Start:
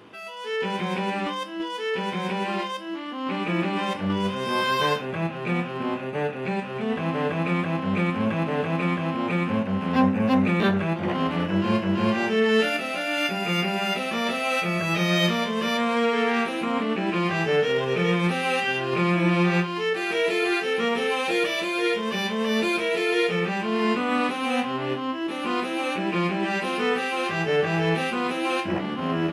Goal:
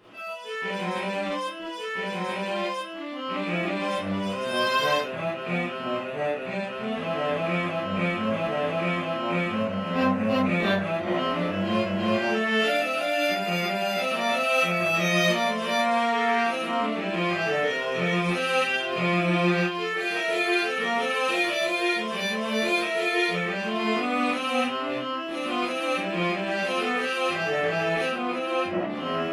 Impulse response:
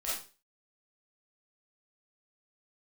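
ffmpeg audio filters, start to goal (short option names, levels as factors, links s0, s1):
-filter_complex "[0:a]asettb=1/sr,asplit=3[s0][s1][s2];[s0]atrim=end=28.034[s3];[s1]atrim=start=28.03:end=28.9,asetpts=PTS-STARTPTS,afade=t=in:d=0.004:c=qsin,afade=t=out:st=0.866:d=0.004:c=qsin,highshelf=f=3100:g=-10.5[s4];[s2]atrim=start=28.896[s5];[s3][s4]acrossfade=d=0.004:c1=hsin:c2=qsin[s6];[s6][s5]acrossfade=d=0.004:c1=qsin:c2=hsin[s7];[1:a]atrim=start_sample=2205,atrim=end_sample=3969[s8];[s7][s8]afir=irnorm=-1:irlink=0,volume=0.708"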